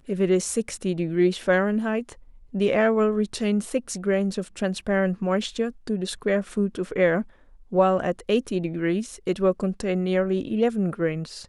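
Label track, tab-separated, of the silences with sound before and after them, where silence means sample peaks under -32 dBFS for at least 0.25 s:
2.120000	2.540000	silence
7.220000	7.720000	silence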